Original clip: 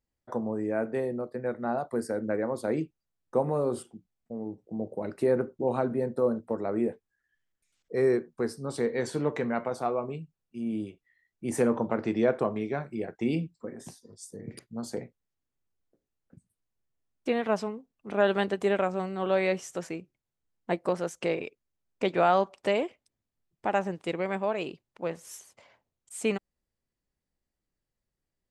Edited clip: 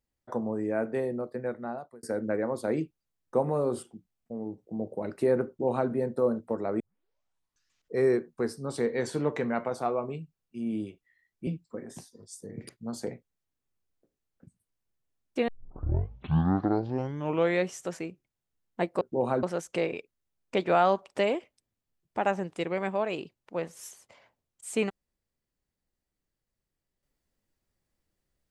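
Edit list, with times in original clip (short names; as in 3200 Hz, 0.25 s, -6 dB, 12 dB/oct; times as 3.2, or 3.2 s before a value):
1.38–2.03 fade out
5.48–5.9 copy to 20.91
6.8 tape start 1.14 s
11.47–13.37 cut
17.38 tape start 2.21 s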